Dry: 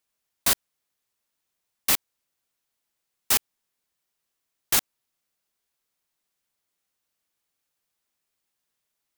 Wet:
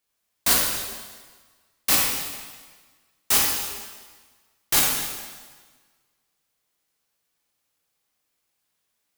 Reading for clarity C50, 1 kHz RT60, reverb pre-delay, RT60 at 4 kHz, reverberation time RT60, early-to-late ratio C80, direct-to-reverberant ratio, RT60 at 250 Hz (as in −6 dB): 0.0 dB, 1.5 s, 7 ms, 1.4 s, 1.5 s, 2.5 dB, −3.5 dB, 1.5 s